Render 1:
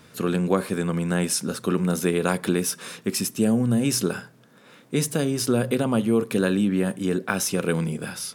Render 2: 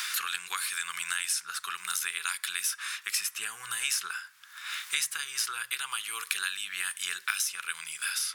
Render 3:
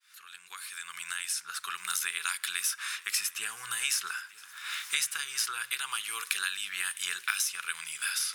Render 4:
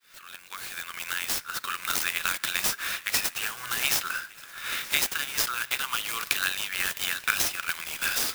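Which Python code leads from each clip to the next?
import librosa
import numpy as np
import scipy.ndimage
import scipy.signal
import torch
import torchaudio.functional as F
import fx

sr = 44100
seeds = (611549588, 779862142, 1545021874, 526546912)

y1 = scipy.signal.sosfilt(scipy.signal.cheby2(4, 40, 650.0, 'highpass', fs=sr, output='sos'), x)
y1 = fx.band_squash(y1, sr, depth_pct=100)
y2 = fx.fade_in_head(y1, sr, length_s=1.88)
y2 = fx.echo_swing(y2, sr, ms=1238, ratio=3, feedback_pct=53, wet_db=-22.0)
y3 = fx.clock_jitter(y2, sr, seeds[0], jitter_ms=0.03)
y3 = F.gain(torch.from_numpy(y3), 5.0).numpy()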